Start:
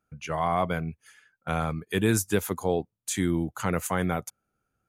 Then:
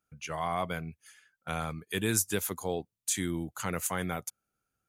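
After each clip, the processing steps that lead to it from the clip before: treble shelf 2.2 kHz +9.5 dB; trim -7.5 dB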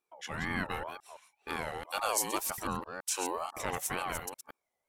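chunks repeated in reverse 167 ms, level -7 dB; wow and flutter 29 cents; ring modulator with a swept carrier 820 Hz, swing 25%, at 2 Hz

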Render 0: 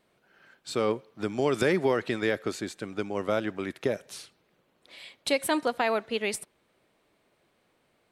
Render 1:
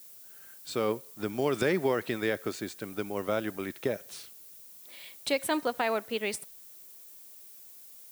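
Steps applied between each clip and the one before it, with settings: added noise violet -48 dBFS; trim -2.5 dB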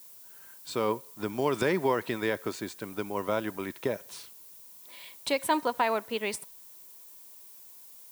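peaking EQ 980 Hz +11.5 dB 0.21 oct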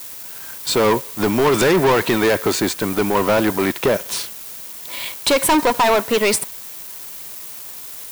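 waveshaping leveller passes 5; trim +2 dB

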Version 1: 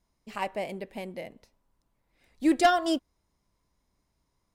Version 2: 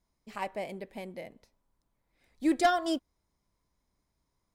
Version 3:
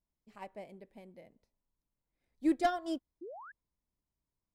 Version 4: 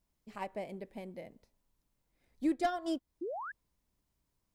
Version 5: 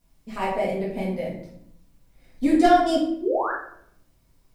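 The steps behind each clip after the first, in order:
band-stop 2.8 kHz, Q 16; trim -3.5 dB
painted sound rise, 3.21–3.52 s, 310–1800 Hz -35 dBFS; tilt shelf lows +3.5 dB, about 650 Hz; upward expansion 1.5:1, over -39 dBFS; trim -4 dB
compression 2:1, threshold -45 dBFS, peak gain reduction 11.5 dB; trim +8.5 dB
simulated room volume 130 m³, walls mixed, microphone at 1.8 m; trim +8.5 dB

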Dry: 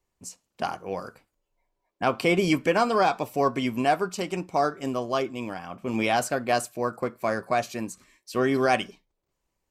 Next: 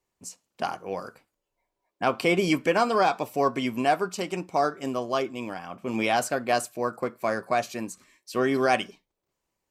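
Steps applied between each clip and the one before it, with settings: bass shelf 84 Hz -11 dB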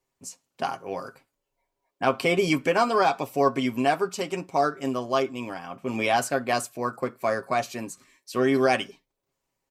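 comb 7.4 ms, depth 43%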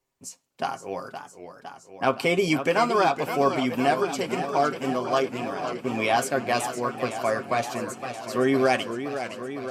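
modulated delay 513 ms, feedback 75%, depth 156 cents, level -10 dB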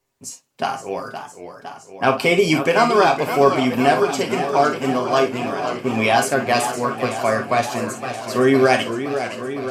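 gated-style reverb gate 80 ms flat, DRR 5.5 dB; trim +5.5 dB

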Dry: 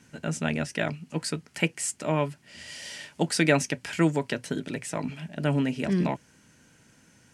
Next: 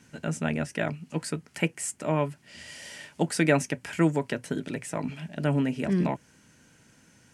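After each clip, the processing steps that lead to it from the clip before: dynamic bell 4.3 kHz, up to -7 dB, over -47 dBFS, Q 0.92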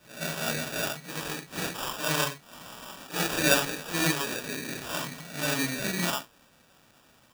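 phase randomisation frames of 200 ms; sample-rate reducer 2.1 kHz, jitter 0%; tilt shelf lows -7.5 dB, about 860 Hz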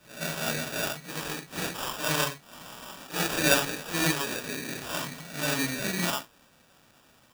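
block-companded coder 5-bit

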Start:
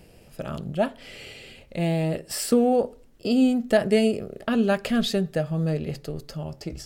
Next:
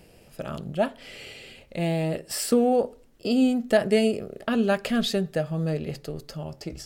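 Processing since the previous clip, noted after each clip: bass shelf 190 Hz -4 dB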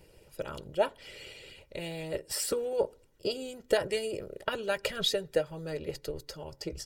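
comb 2.1 ms, depth 74%; harmonic-percussive split harmonic -13 dB; trim -1.5 dB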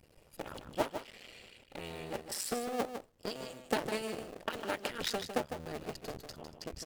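cycle switcher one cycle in 2, muted; on a send: delay 154 ms -8.5 dB; on the sum: trim -3 dB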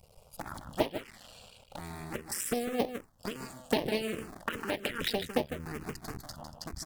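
touch-sensitive phaser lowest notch 290 Hz, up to 1.4 kHz, full sweep at -30.5 dBFS; trim +6.5 dB

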